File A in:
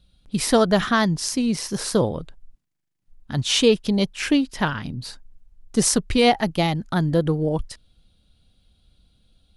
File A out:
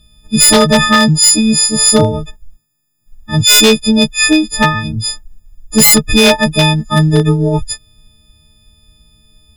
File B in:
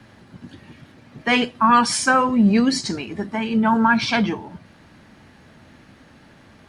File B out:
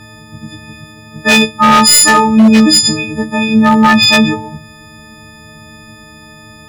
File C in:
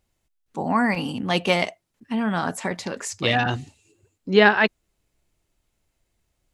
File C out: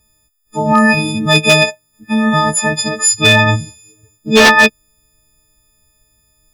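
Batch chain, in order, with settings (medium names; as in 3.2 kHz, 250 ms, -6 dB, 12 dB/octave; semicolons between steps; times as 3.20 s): partials quantised in pitch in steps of 6 st; bass shelf 180 Hz +10.5 dB; wavefolder -7 dBFS; trim +6 dB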